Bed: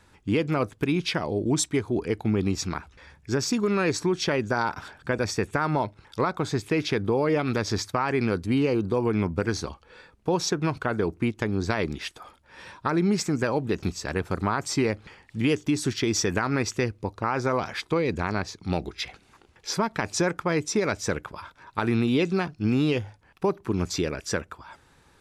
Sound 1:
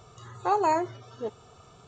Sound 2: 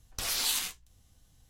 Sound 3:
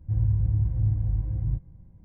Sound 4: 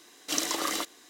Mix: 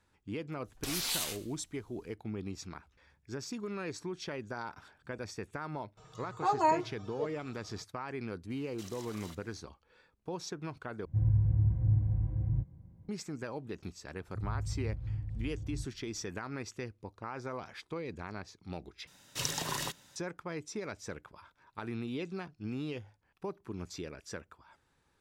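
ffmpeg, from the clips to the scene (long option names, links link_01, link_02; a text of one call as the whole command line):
ffmpeg -i bed.wav -i cue0.wav -i cue1.wav -i cue2.wav -i cue3.wav -filter_complex "[4:a]asplit=2[link_01][link_02];[3:a]asplit=2[link_03][link_04];[0:a]volume=-15dB[link_05];[2:a]asplit=4[link_06][link_07][link_08][link_09];[link_07]adelay=102,afreqshift=61,volume=-20dB[link_10];[link_08]adelay=204,afreqshift=122,volume=-27.3dB[link_11];[link_09]adelay=306,afreqshift=183,volume=-34.7dB[link_12];[link_06][link_10][link_11][link_12]amix=inputs=4:normalize=0[link_13];[1:a]aecho=1:1:6.4:0.89[link_14];[link_01]acompressor=threshold=-33dB:ratio=6:attack=3.2:release=140:knee=1:detection=peak[link_15];[link_03]highpass=71[link_16];[link_02]afreqshift=-170[link_17];[link_05]asplit=3[link_18][link_19][link_20];[link_18]atrim=end=11.054[link_21];[link_16]atrim=end=2.04,asetpts=PTS-STARTPTS,volume=-2dB[link_22];[link_19]atrim=start=13.086:end=19.074[link_23];[link_17]atrim=end=1.09,asetpts=PTS-STARTPTS,volume=-5.5dB[link_24];[link_20]atrim=start=20.156[link_25];[link_13]atrim=end=1.49,asetpts=PTS-STARTPTS,volume=-4.5dB,afade=type=in:duration=0.004:curve=hsin,afade=type=out:start_time=1.486:duration=0.004:curve=hsin,adelay=650[link_26];[link_14]atrim=end=1.87,asetpts=PTS-STARTPTS,volume=-7.5dB,afade=type=in:duration=0.004:curve=hsin,afade=type=out:start_time=1.866:duration=0.004:curve=hsin,adelay=5970[link_27];[link_15]atrim=end=1.09,asetpts=PTS-STARTPTS,volume=-13.5dB,afade=type=in:duration=0.004:curve=hsin,afade=type=out:start_time=1.086:duration=0.004:curve=hsin,adelay=374850S[link_28];[link_04]atrim=end=2.04,asetpts=PTS-STARTPTS,volume=-13dB,afade=type=in:duration=0.004:curve=hsin,afade=type=out:start_time=2.036:duration=0.004:curve=hsin,adelay=14270[link_29];[link_21][link_22]acrossfade=duration=0.004:curve1=hsin:curve2=hsin[link_30];[link_30][link_23]acrossfade=duration=0.004:curve1=hsin:curve2=hsin[link_31];[link_31][link_24]acrossfade=duration=0.004:curve1=hsin:curve2=hsin[link_32];[link_32][link_25]acrossfade=duration=0.004:curve1=hsin:curve2=hsin[link_33];[link_33][link_26][link_27][link_28][link_29]amix=inputs=5:normalize=0" out.wav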